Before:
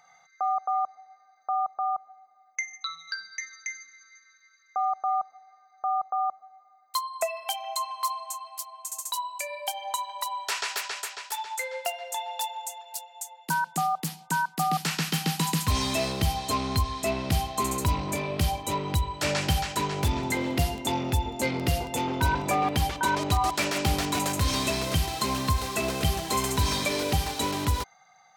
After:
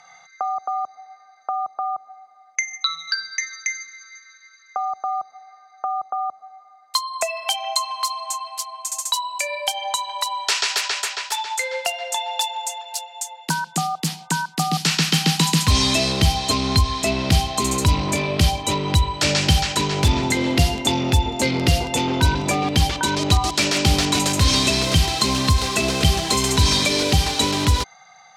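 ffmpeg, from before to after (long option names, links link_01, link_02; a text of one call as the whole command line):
ffmpeg -i in.wav -filter_complex "[0:a]asettb=1/sr,asplit=3[link_01][link_02][link_03];[link_01]atrim=end=3.744[link_04];[link_02]atrim=start=3.74:end=4.93,asetpts=PTS-STARTPTS,afade=type=in:duration=0.004:curve=qsin,afade=type=out:start_time=1.186:duration=0.004:curve=qsin,asubboost=boost=11:cutoff=87[link_05];[link_03]atrim=start=4.926[link_06];[link_04][link_05]acrossfade=duration=0.004:curve1=hsin:curve2=qsin[link_07];[link_07][link_06]acrossfade=duration=0.004:curve1=qsin:curve2=hsin,lowpass=4400,aemphasis=mode=production:type=75kf,acrossover=split=440|3000[link_08][link_09][link_10];[link_09]acompressor=threshold=-33dB:ratio=6[link_11];[link_08][link_11][link_10]amix=inputs=3:normalize=0,volume=8.5dB" out.wav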